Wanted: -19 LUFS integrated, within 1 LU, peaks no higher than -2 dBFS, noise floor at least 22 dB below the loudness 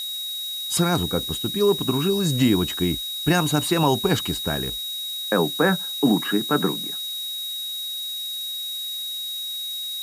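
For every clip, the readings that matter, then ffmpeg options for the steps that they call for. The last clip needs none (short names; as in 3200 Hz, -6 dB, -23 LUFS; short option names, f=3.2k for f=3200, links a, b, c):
steady tone 3800 Hz; tone level -28 dBFS; noise floor -30 dBFS; noise floor target -45 dBFS; loudness -23.0 LUFS; peak -7.5 dBFS; loudness target -19.0 LUFS
-> -af "bandreject=f=3.8k:w=30"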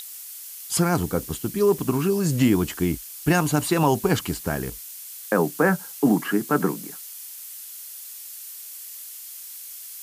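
steady tone none; noise floor -39 dBFS; noise floor target -45 dBFS
-> -af "afftdn=nr=6:nf=-39"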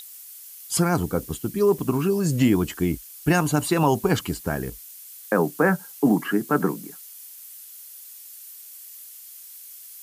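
noise floor -43 dBFS; noise floor target -45 dBFS
-> -af "afftdn=nr=6:nf=-43"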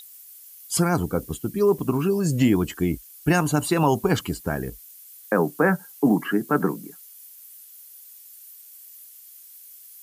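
noise floor -47 dBFS; loudness -23.0 LUFS; peak -8.5 dBFS; loudness target -19.0 LUFS
-> -af "volume=4dB"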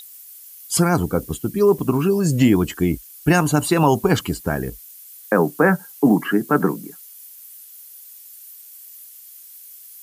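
loudness -19.0 LUFS; peak -4.5 dBFS; noise floor -43 dBFS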